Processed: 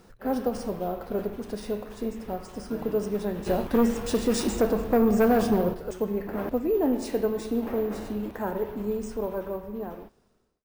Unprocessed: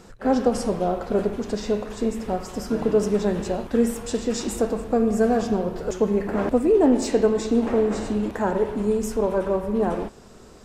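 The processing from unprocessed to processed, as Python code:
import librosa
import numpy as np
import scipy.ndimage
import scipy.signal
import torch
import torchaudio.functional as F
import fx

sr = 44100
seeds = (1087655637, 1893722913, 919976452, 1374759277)

y = fx.fade_out_tail(x, sr, length_s=1.54)
y = fx.fold_sine(y, sr, drive_db=5, ceiling_db=-8.5, at=(3.46, 5.73), fade=0.02)
y = np.repeat(scipy.signal.resample_poly(y, 1, 3), 3)[:len(y)]
y = y * 10.0 ** (-7.0 / 20.0)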